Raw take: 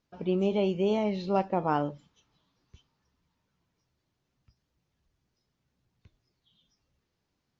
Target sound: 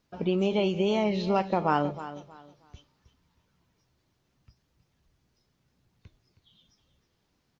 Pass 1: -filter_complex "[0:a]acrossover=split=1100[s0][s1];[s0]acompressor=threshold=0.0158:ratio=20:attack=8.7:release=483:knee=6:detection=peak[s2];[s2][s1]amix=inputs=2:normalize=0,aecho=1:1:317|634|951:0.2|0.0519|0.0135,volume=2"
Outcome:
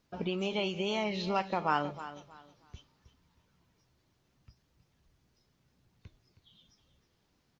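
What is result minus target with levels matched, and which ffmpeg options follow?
compression: peak gain reduction +9 dB
-filter_complex "[0:a]acrossover=split=1100[s0][s1];[s0]acompressor=threshold=0.0473:ratio=20:attack=8.7:release=483:knee=6:detection=peak[s2];[s2][s1]amix=inputs=2:normalize=0,aecho=1:1:317|634|951:0.2|0.0519|0.0135,volume=2"

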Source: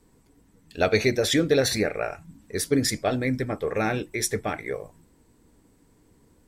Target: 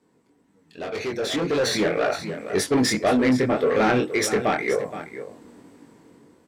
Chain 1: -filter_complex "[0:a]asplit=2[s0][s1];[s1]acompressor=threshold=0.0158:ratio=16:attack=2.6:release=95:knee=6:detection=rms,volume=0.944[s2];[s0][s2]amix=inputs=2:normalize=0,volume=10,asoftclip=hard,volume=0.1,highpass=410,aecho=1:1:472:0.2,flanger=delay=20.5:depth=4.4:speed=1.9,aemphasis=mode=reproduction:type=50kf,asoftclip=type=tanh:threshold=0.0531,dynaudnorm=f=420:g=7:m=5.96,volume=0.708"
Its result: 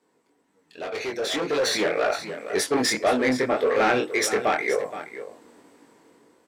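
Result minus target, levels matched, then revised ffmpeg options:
compression: peak gain reduction -5.5 dB; 250 Hz band -4.0 dB
-filter_complex "[0:a]asplit=2[s0][s1];[s1]acompressor=threshold=0.00794:ratio=16:attack=2.6:release=95:knee=6:detection=rms,volume=0.944[s2];[s0][s2]amix=inputs=2:normalize=0,volume=10,asoftclip=hard,volume=0.1,highpass=190,aecho=1:1:472:0.2,flanger=delay=20.5:depth=4.4:speed=1.9,aemphasis=mode=reproduction:type=50kf,asoftclip=type=tanh:threshold=0.0531,dynaudnorm=f=420:g=7:m=5.96,volume=0.708"

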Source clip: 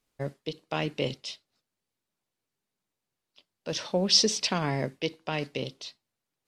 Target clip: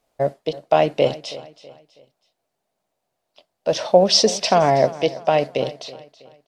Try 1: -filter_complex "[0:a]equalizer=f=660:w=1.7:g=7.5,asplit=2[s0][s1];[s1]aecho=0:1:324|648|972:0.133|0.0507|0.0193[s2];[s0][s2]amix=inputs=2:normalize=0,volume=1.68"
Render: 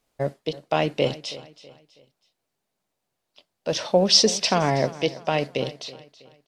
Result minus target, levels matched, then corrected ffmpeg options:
500 Hz band -2.5 dB
-filter_complex "[0:a]equalizer=f=660:w=1.7:g=17,asplit=2[s0][s1];[s1]aecho=0:1:324|648|972:0.133|0.0507|0.0193[s2];[s0][s2]amix=inputs=2:normalize=0,volume=1.68"

